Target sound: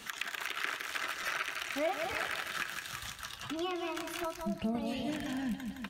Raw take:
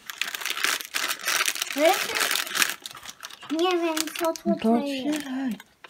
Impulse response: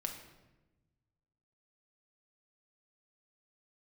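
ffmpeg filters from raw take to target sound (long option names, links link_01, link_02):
-filter_complex "[0:a]aecho=1:1:165|330|495|660|825:0.355|0.149|0.0626|0.0263|0.011,asettb=1/sr,asplit=3[link_01][link_02][link_03];[link_01]atrim=end=2.514[link_04];[link_02]atrim=start=2.51:end=4.75,asetpts=PTS-STARTPTS,afade=type=in:duration=0.004:curve=qsin,afade=type=out:start_time=2.236:duration=0.004:curve=qsin,flanger=delay=8.1:depth=1:regen=70:speed=1.6:shape=triangular[link_05];[link_03]atrim=start=4.746[link_06];[link_04][link_05]acrossfade=duration=0.004:curve1=hsin:curve2=qsin[link_07];[link_07][link_06]acrossfade=duration=0.004:curve1=qsin:curve2=hsin,acrossover=split=2700[link_08][link_09];[link_09]acompressor=threshold=-37dB:ratio=4:attack=1:release=60[link_10];[link_08][link_10]amix=inputs=2:normalize=0,asubboost=boost=11.5:cutoff=100,acompressor=threshold=-40dB:ratio=2.5,volume=2.5dB"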